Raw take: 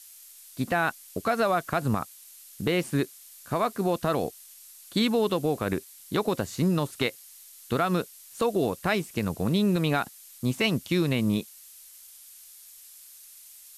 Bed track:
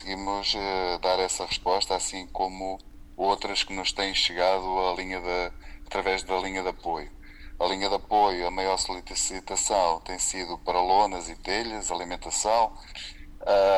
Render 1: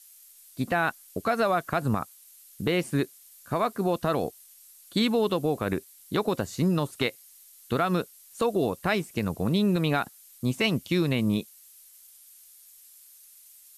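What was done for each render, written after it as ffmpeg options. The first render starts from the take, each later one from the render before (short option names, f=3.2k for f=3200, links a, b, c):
-af "afftdn=nr=6:nf=-50"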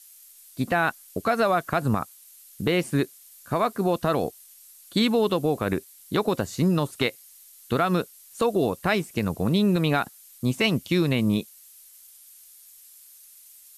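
-af "volume=2.5dB"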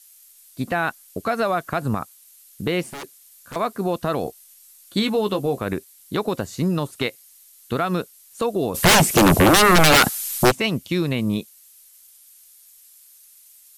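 -filter_complex "[0:a]asettb=1/sr,asplit=3[a][b][c];[a]atrim=end=2.854[d];[b]atrim=start=2.85:end=3.56,asetpts=PTS-STARTPTS,afade=t=in:d=0.004:c=qsin,afade=t=out:st=0.706:d=0.004:c=qsin,aeval=exprs='0.0355*(abs(mod(val(0)/0.0355+3,4)-2)-1)':c=same[e];[c]atrim=start=3.556[f];[d][e]acrossfade=d=0.004:c1=hsin:c2=qsin[g];[g][f]acrossfade=d=0.004:c1=qsin:c2=hsin,asettb=1/sr,asplit=3[h][i][j];[h]atrim=end=4.244[k];[i]atrim=start=4.24:end=5.6,asetpts=PTS-STARTPTS,afade=t=in:d=0.004:c=qsin,afade=t=out:st=1.356:d=0.004:c=qsin,asplit=2[l][m];[m]adelay=15,volume=-8dB[n];[l][n]amix=inputs=2:normalize=0,atrim=end_sample=59976[o];[j]atrim=start=5.596[p];[k][o]acrossfade=d=0.004:c1=hsin:c2=qsin[q];[q][p]acrossfade=d=0.004:c1=qsin:c2=hsin,asplit=3[r][s][t];[r]afade=t=out:st=8.74:d=0.02[u];[s]aeval=exprs='0.335*sin(PI/2*7.94*val(0)/0.335)':c=same,afade=t=in:st=8.74:d=0.02,afade=t=out:st=10.5:d=0.02[v];[t]afade=t=in:st=10.5:d=0.02[w];[u][v][w]amix=inputs=3:normalize=0"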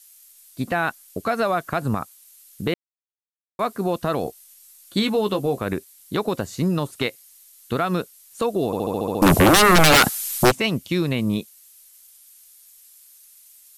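-filter_complex "[0:a]asplit=11[a][b][c][d][e][f][g][h][i][j][k];[a]atrim=end=2.74,asetpts=PTS-STARTPTS,afade=t=out:st=2.736:d=0.004:c=hsin[l];[b]atrim=start=2.74:end=3.59,asetpts=PTS-STARTPTS,volume=0[m];[c]atrim=start=3.59:end=8.732,asetpts=PTS-STARTPTS,afade=t=in:d=0.004:c=hsin[n];[d]atrim=start=8.658:end=8.732[o];[e]atrim=start=8.658:end=8.732[p];[f]atrim=start=8.658:end=8.732[q];[g]atrim=start=8.658:end=8.732[r];[h]atrim=start=8.658:end=8.732[s];[i]atrim=start=8.658:end=8.732[t];[j]atrim=start=8.658:end=8.732[u];[k]atrim=start=9.218[v];[l][m][n]concat=n=3:v=0:a=1[w];[w][o]acrossfade=d=0.004:c1=hsin:c2=hsin[x];[x][p]acrossfade=d=0.004:c1=hsin:c2=hsin[y];[y][q]acrossfade=d=0.004:c1=hsin:c2=hsin[z];[z][r]acrossfade=d=0.004:c1=hsin:c2=hsin[aa];[aa][s]acrossfade=d=0.004:c1=hsin:c2=hsin[ab];[ab][t]acrossfade=d=0.004:c1=hsin:c2=hsin[ac];[ac][u]acrossfade=d=0.004:c1=hsin:c2=hsin[ad];[ad][v]acrossfade=d=0.004:c1=hsin:c2=hsin"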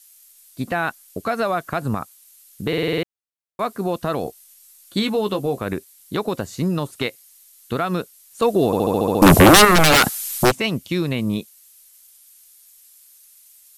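-filter_complex "[0:a]asettb=1/sr,asplit=3[a][b][c];[a]atrim=end=8.424[d];[b]atrim=start=8.42:end=9.65,asetpts=PTS-STARTPTS,afade=t=in:d=0.004:c=qsin,afade=t=out:st=1.226:d=0.004:c=qsin,acontrast=40[e];[c]atrim=start=9.646[f];[d][e]acrossfade=d=0.004:c1=hsin:c2=qsin[g];[g][f]acrossfade=d=0.004:c1=qsin:c2=hsin,asplit=8[h][i][j][k][l][m][n][o];[h]atrim=end=2.732[p];[i]atrim=start=2.678:end=2.732[q];[j]atrim=start=2.678:end=2.732[r];[k]atrim=start=2.678:end=2.732[s];[l]atrim=start=2.678:end=2.732[t];[m]atrim=start=2.678:end=2.732[u];[n]atrim=start=2.678:end=2.732[v];[o]atrim=start=3.028[w];[p][q]acrossfade=d=0.004:c1=hsin:c2=hsin[x];[x][r]acrossfade=d=0.004:c1=hsin:c2=hsin[y];[y][s]acrossfade=d=0.004:c1=hsin:c2=hsin[z];[z][t]acrossfade=d=0.004:c1=hsin:c2=hsin[aa];[aa][u]acrossfade=d=0.004:c1=hsin:c2=hsin[ab];[ab][v]acrossfade=d=0.004:c1=hsin:c2=hsin[ac];[ac][w]acrossfade=d=0.004:c1=hsin:c2=hsin"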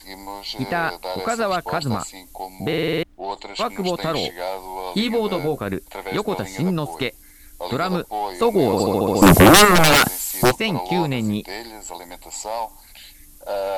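-filter_complex "[1:a]volume=-4.5dB[a];[0:a][a]amix=inputs=2:normalize=0"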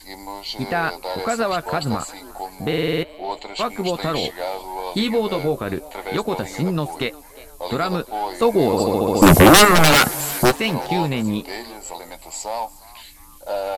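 -filter_complex "[0:a]asplit=2[a][b];[b]adelay=13,volume=-11.5dB[c];[a][c]amix=inputs=2:normalize=0,asplit=4[d][e][f][g];[e]adelay=357,afreqshift=140,volume=-20.5dB[h];[f]adelay=714,afreqshift=280,volume=-27.2dB[i];[g]adelay=1071,afreqshift=420,volume=-34dB[j];[d][h][i][j]amix=inputs=4:normalize=0"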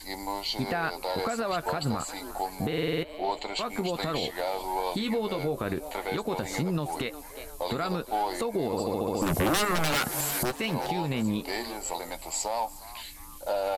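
-af "acompressor=threshold=-22dB:ratio=16,alimiter=limit=-19dB:level=0:latency=1:release=144"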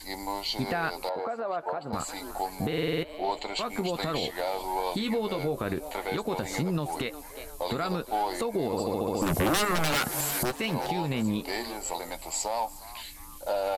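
-filter_complex "[0:a]asettb=1/sr,asplit=3[a][b][c];[a]atrim=end=1.094[d];[b]atrim=start=1.09:end=1.93,asetpts=PTS-STARTPTS,afade=t=in:d=0.004:c=qsin,afade=t=out:st=0.836:d=0.004:c=qsin,bandpass=f=670:t=q:w=1.1[e];[c]atrim=start=1.926[f];[d][e]acrossfade=d=0.004:c1=hsin:c2=qsin[g];[g][f]acrossfade=d=0.004:c1=qsin:c2=hsin"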